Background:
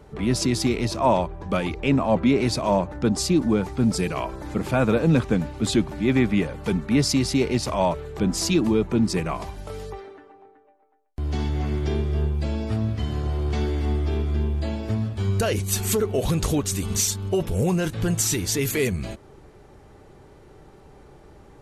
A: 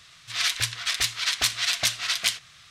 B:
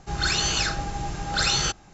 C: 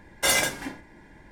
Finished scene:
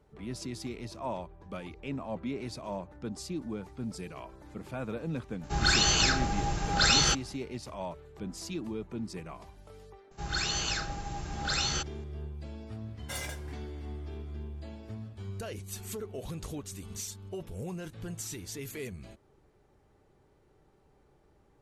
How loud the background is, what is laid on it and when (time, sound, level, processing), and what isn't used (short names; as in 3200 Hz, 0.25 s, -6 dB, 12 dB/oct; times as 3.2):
background -16.5 dB
5.43 add B -0.5 dB
10.11 add B -7.5 dB
12.86 add C -17 dB
not used: A